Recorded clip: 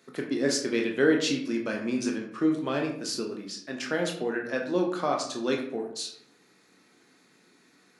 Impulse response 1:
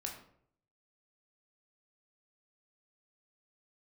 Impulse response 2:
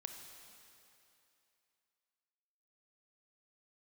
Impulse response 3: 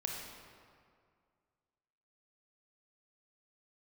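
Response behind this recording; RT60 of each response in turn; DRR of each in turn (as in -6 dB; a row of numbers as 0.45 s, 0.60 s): 1; 0.65 s, 2.8 s, 2.1 s; 0.5 dB, 4.5 dB, -0.5 dB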